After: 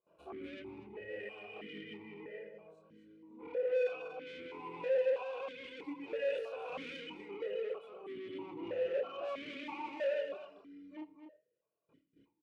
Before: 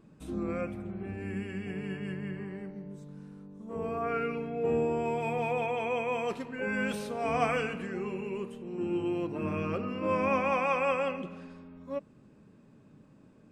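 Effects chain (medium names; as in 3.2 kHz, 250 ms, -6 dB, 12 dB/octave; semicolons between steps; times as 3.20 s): reverb removal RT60 0.82 s; gate with hold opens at -48 dBFS; comb 2.2 ms, depth 87%; dynamic bell 430 Hz, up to +5 dB, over -41 dBFS, Q 2.2; chorus voices 4, 0.7 Hz, delay 29 ms, depth 2.6 ms; valve stage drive 38 dB, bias 0.2; delay 264 ms -8.5 dB; on a send at -17.5 dB: reverberation RT60 0.35 s, pre-delay 53 ms; on the sum: speed mistake 44.1 kHz file played as 48 kHz; stepped vowel filter 3.1 Hz; trim +11 dB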